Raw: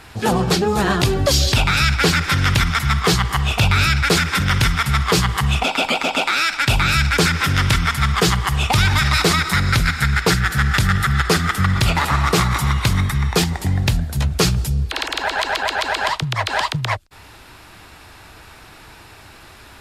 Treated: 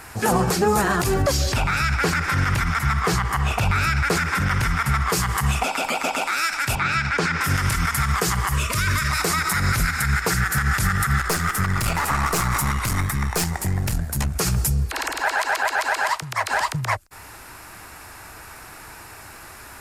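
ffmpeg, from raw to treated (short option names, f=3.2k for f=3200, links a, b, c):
-filter_complex "[0:a]asettb=1/sr,asplit=3[a][b][c];[a]atrim=end=1.224[d];[b]atrim=start=1.22:end=5.1,asetpts=PTS-STARTPTS,afade=t=in:d=0.004:c=qsin,afade=t=out:st=3.876:d=0.004:c=qsin,highshelf=f=4.9k:g=-11[e];[c]atrim=start=5.096[f];[d][e]acrossfade=d=0.004:c1=hsin:c2=qsin[g];[g][f]acrossfade=d=0.004:c1=qsin:c2=hsin,asettb=1/sr,asplit=3[h][i][j];[h]atrim=end=6.754[k];[i]atrim=start=6.75:end=7.41,asetpts=PTS-STARTPTS,afade=t=in:d=0.004:c=qsin,afade=t=out:st=0.656:d=0.004:c=qsin,highpass=110,lowpass=4k[l];[j]atrim=start=7.406[m];[k][l]acrossfade=d=0.004:c1=hsin:c2=qsin[n];[n][m]acrossfade=d=0.004:c1=qsin:c2=hsin,asettb=1/sr,asplit=3[o][p][q];[o]atrim=end=8.544[r];[p]atrim=start=8.54:end=9.1,asetpts=PTS-STARTPTS,afade=t=in:d=0.004:c=qsin,afade=t=out:st=0.556:d=0.004:c=qsin,asuperstop=centerf=800:order=20:qfactor=2.9[s];[q]atrim=start=9.096[t];[r][s]acrossfade=d=0.004:c1=hsin:c2=qsin[u];[u][t]acrossfade=d=0.004:c1=qsin:c2=hsin,asettb=1/sr,asplit=3[v][w][x];[v]atrim=end=11.184[y];[w]atrim=start=11.18:end=14.36,asetpts=PTS-STARTPTS,afade=t=in:d=0.004:c=qsin,afade=t=out:st=3.176:d=0.004:c=qsin,aeval=exprs='(tanh(5.01*val(0)+0.5)-tanh(0.5))/5.01':c=same[z];[x]atrim=start=14.356[aa];[y][z]acrossfade=d=0.004:c1=hsin:c2=qsin[ab];[ab][aa]acrossfade=d=0.004:c1=qsin:c2=hsin,asettb=1/sr,asplit=3[ac][ad][ae];[ac]atrim=end=15.214[af];[ad]atrim=start=15.21:end=16.51,asetpts=PTS-STARTPTS,afade=t=in:d=0.004:c=qsin,afade=t=out:st=1.296:d=0.004:c=qsin,lowshelf=f=250:g=-11.5[ag];[ae]atrim=start=16.506[ah];[af][ag]acrossfade=d=0.004:c1=hsin:c2=qsin[ai];[ai][ah]acrossfade=d=0.004:c1=qsin:c2=hsin,tiltshelf=f=970:g=-6,alimiter=limit=-11.5dB:level=0:latency=1:release=59,equalizer=f=3.5k:t=o:w=1.2:g=-15,volume=4dB"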